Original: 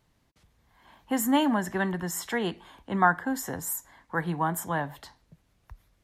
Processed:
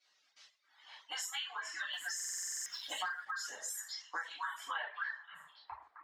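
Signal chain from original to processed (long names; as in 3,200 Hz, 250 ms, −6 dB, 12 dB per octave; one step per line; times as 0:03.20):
harmonic-percussive split with one part muted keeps percussive
on a send: echo through a band-pass that steps 262 ms, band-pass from 1,500 Hz, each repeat 1.4 octaves, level −3.5 dB
on the sum: reverb whose tail is shaped and stops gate 190 ms falling, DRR −8 dB
reverb reduction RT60 1.7 s
three-way crossover with the lows and the highs turned down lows −14 dB, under 350 Hz, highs −22 dB, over 4,000 Hz
band-pass filter sweep 6,000 Hz → 890 Hz, 0:04.23–0:05.65
low-shelf EQ 470 Hz −4.5 dB
0:01.93–0:03.31: leveller curve on the samples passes 1
downward compressor 6 to 1, threshold −55 dBFS, peak gain reduction 21 dB
buffer that repeats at 0:02.15, samples 2,048, times 10
level +16.5 dB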